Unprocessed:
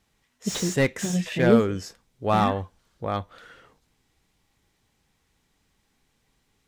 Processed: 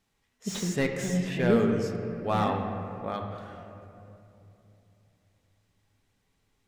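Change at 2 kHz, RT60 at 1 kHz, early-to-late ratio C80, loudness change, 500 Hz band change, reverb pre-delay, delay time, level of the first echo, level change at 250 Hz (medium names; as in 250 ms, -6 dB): -4.5 dB, 2.6 s, 6.0 dB, -4.0 dB, -3.5 dB, 4 ms, no echo, no echo, -3.5 dB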